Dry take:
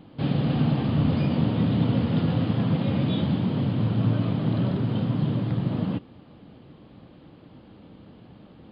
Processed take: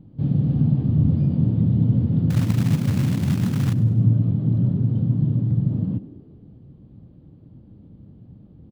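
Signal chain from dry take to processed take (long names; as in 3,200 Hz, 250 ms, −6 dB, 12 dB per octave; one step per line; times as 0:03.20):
drawn EQ curve 120 Hz 0 dB, 1,100 Hz −24 dB, 2,800 Hz −28 dB, 5,400 Hz −23 dB
0:02.30–0:03.73: floating-point word with a short mantissa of 2 bits
echo with shifted repeats 98 ms, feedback 54%, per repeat +44 Hz, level −17.5 dB
level +7 dB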